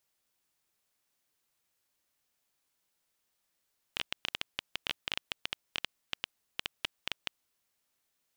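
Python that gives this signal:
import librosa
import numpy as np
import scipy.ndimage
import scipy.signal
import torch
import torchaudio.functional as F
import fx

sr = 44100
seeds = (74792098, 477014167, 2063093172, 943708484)

y = fx.geiger_clicks(sr, seeds[0], length_s=3.35, per_s=9.7, level_db=-13.5)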